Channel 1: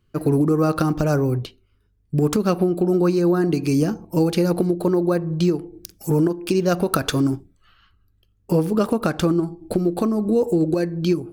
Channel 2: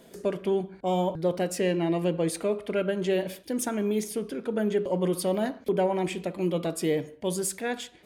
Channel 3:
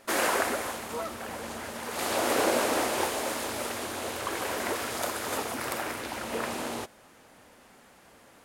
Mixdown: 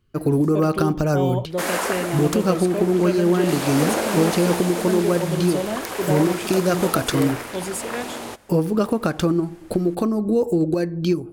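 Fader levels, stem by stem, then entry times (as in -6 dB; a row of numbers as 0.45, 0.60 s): -0.5, 0.0, +2.0 dB; 0.00, 0.30, 1.50 s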